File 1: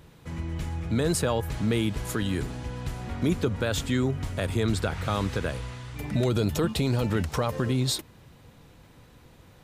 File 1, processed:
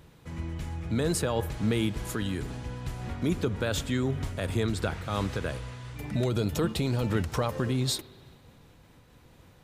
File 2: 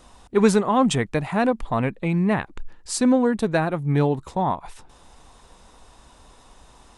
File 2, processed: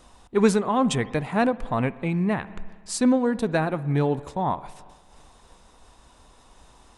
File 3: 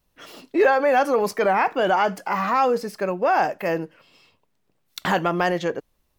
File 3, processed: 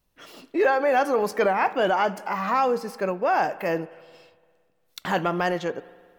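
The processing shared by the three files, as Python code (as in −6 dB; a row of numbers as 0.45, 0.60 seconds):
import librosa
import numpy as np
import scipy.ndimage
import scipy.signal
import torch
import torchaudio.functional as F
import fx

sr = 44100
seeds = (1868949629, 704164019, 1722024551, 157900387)

y = fx.rev_spring(x, sr, rt60_s=1.8, pass_ms=(57,), chirp_ms=70, drr_db=17.0)
y = fx.am_noise(y, sr, seeds[0], hz=5.7, depth_pct=55)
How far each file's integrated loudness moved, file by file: −2.5, −2.5, −2.5 LU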